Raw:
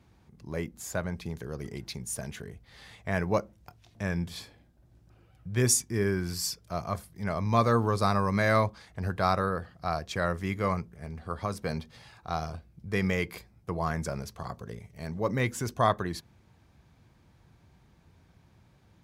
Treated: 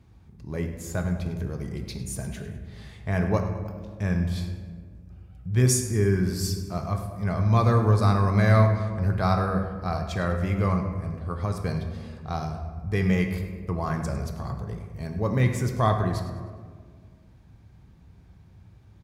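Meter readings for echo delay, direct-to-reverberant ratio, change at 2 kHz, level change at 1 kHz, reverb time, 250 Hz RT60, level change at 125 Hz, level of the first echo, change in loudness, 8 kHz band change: 102 ms, 4.0 dB, 0.0 dB, +0.5 dB, 1.8 s, 2.2 s, +9.0 dB, -14.0 dB, +4.5 dB, -0.5 dB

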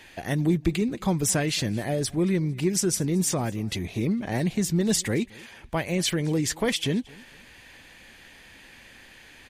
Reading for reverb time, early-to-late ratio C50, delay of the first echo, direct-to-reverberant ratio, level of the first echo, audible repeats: no reverb, no reverb, 225 ms, no reverb, -24.0 dB, 2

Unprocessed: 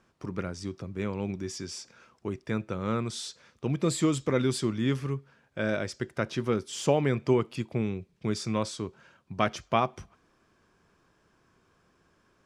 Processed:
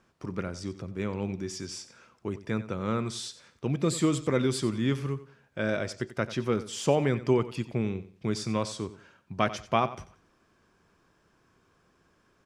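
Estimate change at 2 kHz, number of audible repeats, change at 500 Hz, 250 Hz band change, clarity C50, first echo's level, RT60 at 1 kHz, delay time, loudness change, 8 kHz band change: 0.0 dB, 2, 0.0 dB, 0.0 dB, no reverb, -15.0 dB, no reverb, 91 ms, 0.0 dB, 0.0 dB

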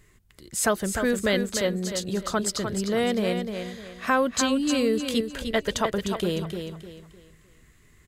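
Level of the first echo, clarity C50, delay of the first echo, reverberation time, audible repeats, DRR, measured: -7.0 dB, no reverb, 303 ms, no reverb, 3, no reverb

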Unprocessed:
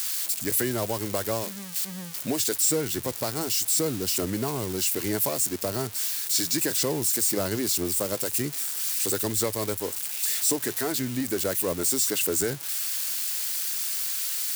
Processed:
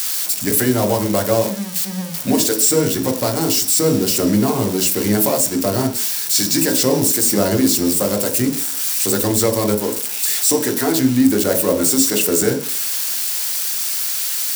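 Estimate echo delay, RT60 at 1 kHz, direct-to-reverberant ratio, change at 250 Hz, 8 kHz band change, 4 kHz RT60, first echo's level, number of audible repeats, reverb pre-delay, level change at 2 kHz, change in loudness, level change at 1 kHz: no echo, 0.50 s, 3.0 dB, +14.0 dB, +8.0 dB, 0.85 s, no echo, no echo, 3 ms, +8.0 dB, +9.0 dB, +10.5 dB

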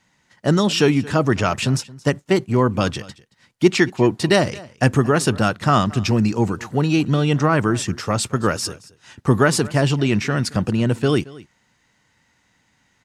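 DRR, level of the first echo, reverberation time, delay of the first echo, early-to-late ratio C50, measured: no reverb, -21.0 dB, no reverb, 224 ms, no reverb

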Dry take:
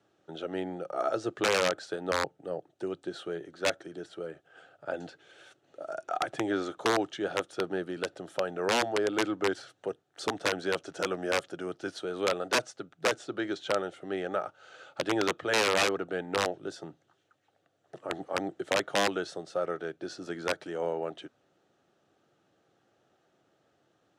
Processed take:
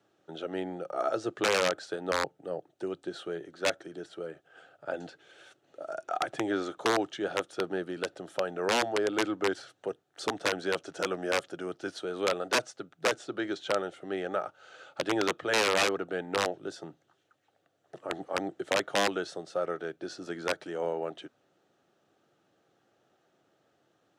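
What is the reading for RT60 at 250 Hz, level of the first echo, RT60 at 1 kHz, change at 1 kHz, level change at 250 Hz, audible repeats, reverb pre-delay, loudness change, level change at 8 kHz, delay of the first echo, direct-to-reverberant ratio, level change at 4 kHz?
no reverb, no echo, no reverb, 0.0 dB, -0.5 dB, no echo, no reverb, 0.0 dB, 0.0 dB, no echo, no reverb, 0.0 dB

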